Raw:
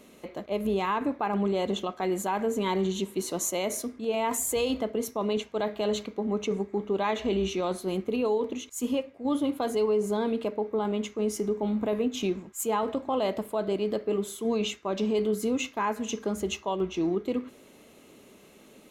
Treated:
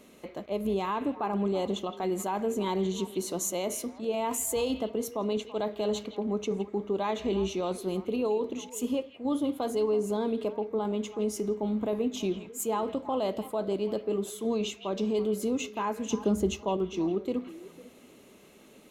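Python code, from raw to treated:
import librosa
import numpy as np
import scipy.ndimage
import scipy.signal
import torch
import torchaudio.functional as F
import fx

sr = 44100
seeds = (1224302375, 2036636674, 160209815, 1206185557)

p1 = fx.low_shelf(x, sr, hz=410.0, db=9.0, at=(16.11, 16.77))
p2 = p1 + fx.echo_stepped(p1, sr, ms=166, hz=2700.0, octaves=-1.4, feedback_pct=70, wet_db=-10.5, dry=0)
p3 = fx.dynamic_eq(p2, sr, hz=1900.0, q=1.2, threshold_db=-46.0, ratio=4.0, max_db=-6)
y = F.gain(torch.from_numpy(p3), -1.5).numpy()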